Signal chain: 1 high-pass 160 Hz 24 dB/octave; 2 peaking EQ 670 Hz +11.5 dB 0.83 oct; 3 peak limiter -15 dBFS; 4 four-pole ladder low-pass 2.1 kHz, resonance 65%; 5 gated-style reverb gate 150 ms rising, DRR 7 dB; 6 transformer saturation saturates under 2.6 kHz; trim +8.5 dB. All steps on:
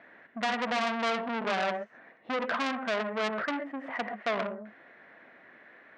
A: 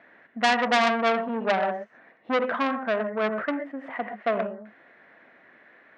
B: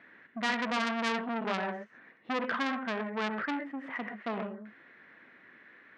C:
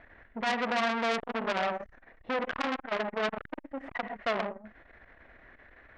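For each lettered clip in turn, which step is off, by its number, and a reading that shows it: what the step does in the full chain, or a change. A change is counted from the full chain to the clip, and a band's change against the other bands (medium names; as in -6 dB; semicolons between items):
3, mean gain reduction 1.5 dB; 2, 500 Hz band -3.5 dB; 1, crest factor change +1.5 dB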